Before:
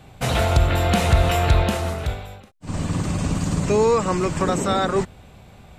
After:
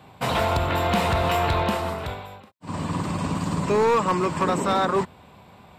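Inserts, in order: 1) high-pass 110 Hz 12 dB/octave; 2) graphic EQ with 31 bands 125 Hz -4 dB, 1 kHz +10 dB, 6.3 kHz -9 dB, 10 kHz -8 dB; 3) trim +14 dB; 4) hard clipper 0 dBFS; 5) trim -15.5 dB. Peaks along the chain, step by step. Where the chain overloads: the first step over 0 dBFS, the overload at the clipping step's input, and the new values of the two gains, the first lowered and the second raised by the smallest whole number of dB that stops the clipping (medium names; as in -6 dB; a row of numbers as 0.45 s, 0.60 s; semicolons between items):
-6.5 dBFS, -6.0 dBFS, +8.0 dBFS, 0.0 dBFS, -15.5 dBFS; step 3, 8.0 dB; step 3 +6 dB, step 5 -7.5 dB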